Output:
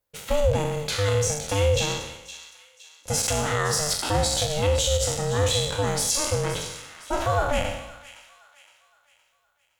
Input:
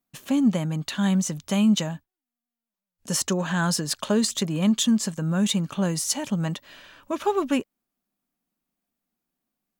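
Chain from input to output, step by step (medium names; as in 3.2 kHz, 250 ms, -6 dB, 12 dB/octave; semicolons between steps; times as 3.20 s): spectral sustain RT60 0.86 s; bass shelf 79 Hz -11.5 dB; peak limiter -14.5 dBFS, peak gain reduction 6.5 dB; ring modulator 300 Hz; feedback echo behind a high-pass 515 ms, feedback 41%, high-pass 1.6 kHz, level -13.5 dB; trim +3.5 dB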